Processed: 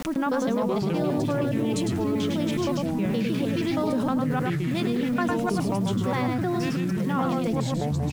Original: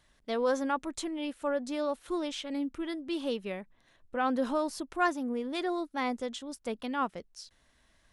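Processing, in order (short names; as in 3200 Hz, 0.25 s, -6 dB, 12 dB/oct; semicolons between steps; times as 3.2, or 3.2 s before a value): slices in reverse order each 0.157 s, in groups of 6; bell 190 Hz +14 dB 0.77 oct; bit-crush 9-bit; echo 0.104 s -5 dB; echoes that change speed 0.268 s, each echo -5 st, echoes 3; fast leveller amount 70%; gain -2 dB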